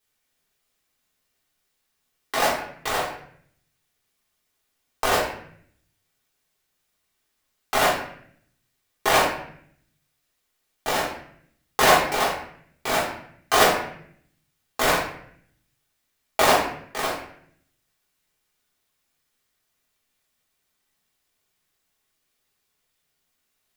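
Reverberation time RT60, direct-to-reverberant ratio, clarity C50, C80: 0.65 s, -7.5 dB, 4.0 dB, 8.0 dB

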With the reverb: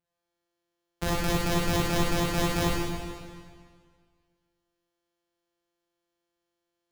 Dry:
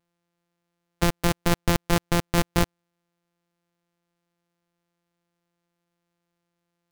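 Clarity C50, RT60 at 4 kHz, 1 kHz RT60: -4.5 dB, 1.8 s, 1.9 s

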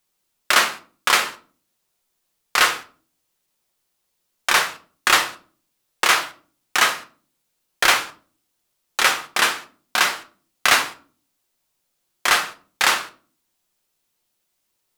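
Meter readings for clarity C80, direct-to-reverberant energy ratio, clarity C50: 20.0 dB, 4.5 dB, 15.0 dB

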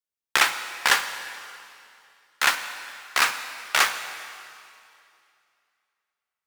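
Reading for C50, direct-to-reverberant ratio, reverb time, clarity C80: 9.5 dB, 8.5 dB, 2.5 s, 10.5 dB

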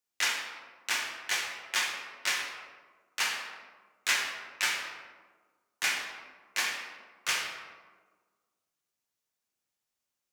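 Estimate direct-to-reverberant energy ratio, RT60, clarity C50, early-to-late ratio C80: -1.5 dB, 1.5 s, 3.5 dB, 5.0 dB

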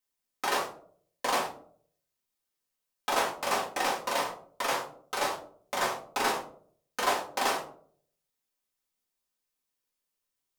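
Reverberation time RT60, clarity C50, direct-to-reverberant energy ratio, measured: 0.55 s, 8.5 dB, -4.5 dB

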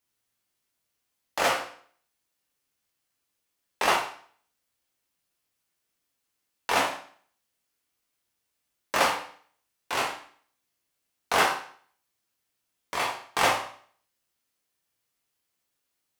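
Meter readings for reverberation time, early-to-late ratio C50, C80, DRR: 0.50 s, 6.0 dB, 10.0 dB, -2.5 dB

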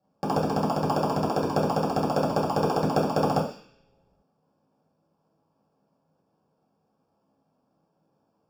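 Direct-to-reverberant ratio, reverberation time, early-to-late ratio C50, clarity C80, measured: -7.0 dB, 0.50 s, 7.0 dB, 10.0 dB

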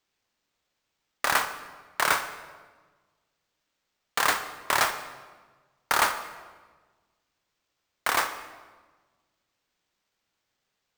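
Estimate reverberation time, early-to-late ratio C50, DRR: 1.4 s, 10.5 dB, 9.0 dB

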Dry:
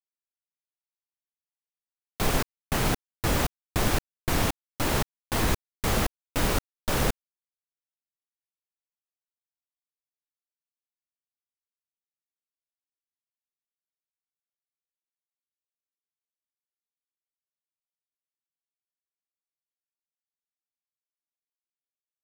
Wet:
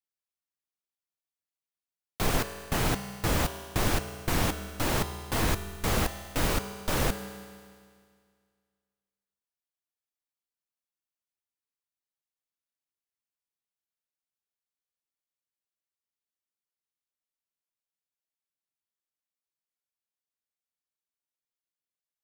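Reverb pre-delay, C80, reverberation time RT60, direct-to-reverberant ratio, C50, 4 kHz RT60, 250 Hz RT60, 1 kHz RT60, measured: 4 ms, 11.0 dB, 2.0 s, 8.5 dB, 10.0 dB, 2.0 s, 2.0 s, 2.0 s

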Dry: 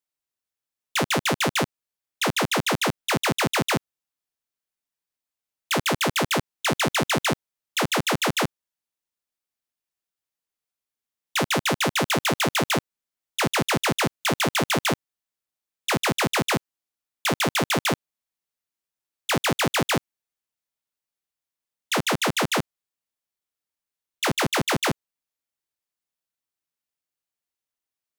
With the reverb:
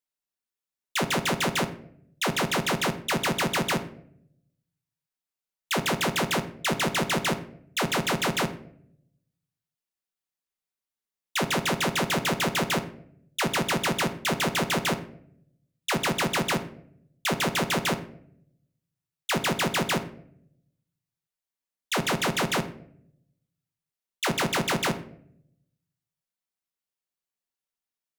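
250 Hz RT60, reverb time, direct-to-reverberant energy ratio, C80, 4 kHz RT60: 1.0 s, 0.70 s, 7.5 dB, 17.0 dB, 0.40 s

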